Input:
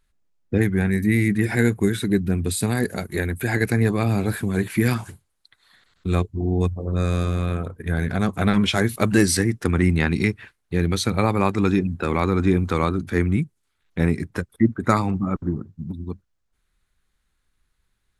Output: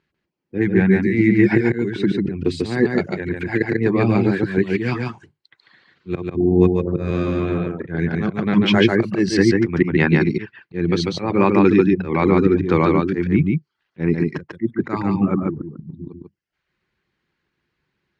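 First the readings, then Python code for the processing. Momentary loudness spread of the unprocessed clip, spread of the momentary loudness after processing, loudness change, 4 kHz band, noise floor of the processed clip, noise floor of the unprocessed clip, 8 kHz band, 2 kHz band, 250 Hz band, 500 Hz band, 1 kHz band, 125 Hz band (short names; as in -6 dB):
9 LU, 11 LU, +3.5 dB, +1.5 dB, -77 dBFS, -73 dBFS, under -10 dB, +2.5 dB, +4.5 dB, +6.0 dB, +1.5 dB, 0.0 dB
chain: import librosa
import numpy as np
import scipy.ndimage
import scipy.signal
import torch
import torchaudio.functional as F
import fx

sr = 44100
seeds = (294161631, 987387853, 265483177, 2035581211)

p1 = fx.dereverb_blind(x, sr, rt60_s=0.57)
p2 = fx.notch(p1, sr, hz=3500.0, q=26.0)
p3 = fx.auto_swell(p2, sr, attack_ms=177.0)
p4 = fx.cabinet(p3, sr, low_hz=140.0, low_slope=12, high_hz=4500.0, hz=(150.0, 350.0, 680.0, 1300.0, 3800.0), db=(5, 7, -4, -5, -7))
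p5 = p4 + fx.echo_single(p4, sr, ms=144, db=-3.0, dry=0)
y = p5 * librosa.db_to_amplitude(5.5)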